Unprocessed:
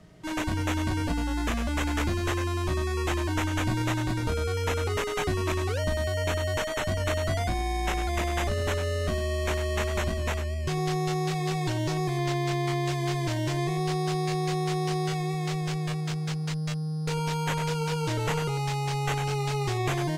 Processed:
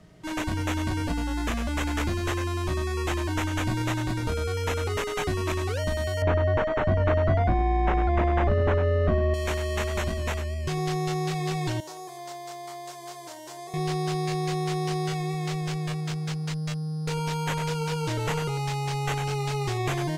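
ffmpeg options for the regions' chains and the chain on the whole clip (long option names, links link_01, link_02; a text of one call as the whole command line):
ffmpeg -i in.wav -filter_complex "[0:a]asettb=1/sr,asplit=3[link_01][link_02][link_03];[link_01]atrim=end=6.224[link_04];[link_02]atrim=start=6.22:end=9.34,asetpts=PTS-STARTPTS,afade=type=in:duration=0.004:curve=qsin,afade=type=out:start_time=3.116:duration=0.004:curve=qsin,lowpass=1400,acontrast=47[link_05];[link_03]atrim=start=9.336[link_06];[link_04][link_05]acrossfade=duration=0.004:curve1=hsin:curve2=qsin[link_07];[link_07][link_06]acrossfade=duration=0.004:curve1=qsin:curve2=hsin,asettb=1/sr,asplit=3[link_08][link_09][link_10];[link_08]atrim=end=11.804[link_11];[link_09]atrim=start=11.8:end=13.74,asetpts=PTS-STARTPTS,afade=type=in:duration=0.004:curve=qsin,afade=type=out:start_time=1.936:duration=0.004:curve=qsin,highpass=720,equalizer=frequency=2400:width_type=o:width=2:gain=-14.5,asplit=2[link_12][link_13];[link_13]adelay=30,volume=-11.5dB[link_14];[link_12][link_14]amix=inputs=2:normalize=0,atrim=end_sample=85554[link_15];[link_10]atrim=start=13.736[link_16];[link_11][link_15]acrossfade=duration=0.004:curve1=hsin:curve2=qsin[link_17];[link_17][link_16]acrossfade=duration=0.004:curve1=qsin:curve2=hsin" out.wav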